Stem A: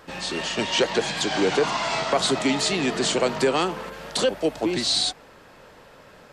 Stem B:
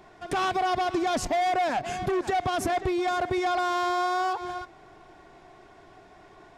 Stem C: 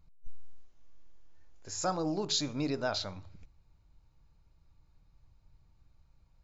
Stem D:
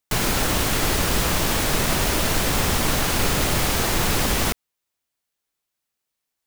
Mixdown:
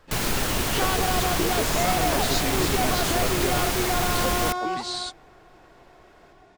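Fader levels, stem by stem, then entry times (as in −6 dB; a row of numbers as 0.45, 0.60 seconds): −9.5, −2.0, +1.0, −4.0 decibels; 0.00, 0.45, 0.00, 0.00 seconds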